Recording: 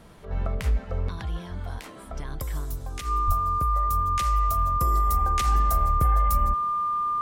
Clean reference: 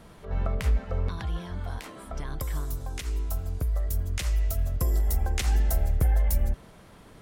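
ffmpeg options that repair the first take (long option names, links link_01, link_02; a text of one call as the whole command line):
ffmpeg -i in.wav -filter_complex "[0:a]bandreject=frequency=1200:width=30,asplit=3[link_01][link_02][link_03];[link_01]afade=type=out:start_time=3.26:duration=0.02[link_04];[link_02]highpass=frequency=140:width=0.5412,highpass=frequency=140:width=1.3066,afade=type=in:start_time=3.26:duration=0.02,afade=type=out:start_time=3.38:duration=0.02[link_05];[link_03]afade=type=in:start_time=3.38:duration=0.02[link_06];[link_04][link_05][link_06]amix=inputs=3:normalize=0" out.wav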